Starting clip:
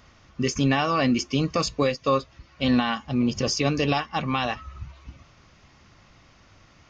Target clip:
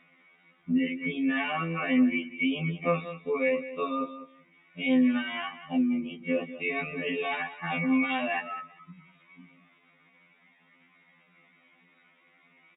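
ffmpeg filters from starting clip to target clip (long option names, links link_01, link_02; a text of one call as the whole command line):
ffmpeg -i in.wav -filter_complex "[0:a]equalizer=frequency=2200:width_type=o:width=0.31:gain=14,afftdn=noise_reduction=15:noise_floor=-31,aecho=1:1:4:0.32,acompressor=threshold=-34dB:ratio=2,adynamicequalizer=threshold=0.00224:dfrequency=930:dqfactor=7:tfrequency=930:tqfactor=7:attack=5:release=100:ratio=0.375:range=1.5:mode=cutabove:tftype=bell,alimiter=level_in=2.5dB:limit=-24dB:level=0:latency=1:release=11,volume=-2.5dB,afftfilt=real='re*between(b*sr/4096,150,3800)':imag='im*between(b*sr/4096,150,3800)':win_size=4096:overlap=0.75,asplit=2[link_01][link_02];[link_02]aecho=0:1:105|210:0.211|0.038[link_03];[link_01][link_03]amix=inputs=2:normalize=0,atempo=0.54,afftfilt=real='re*2*eq(mod(b,4),0)':imag='im*2*eq(mod(b,4),0)':win_size=2048:overlap=0.75,volume=8.5dB" out.wav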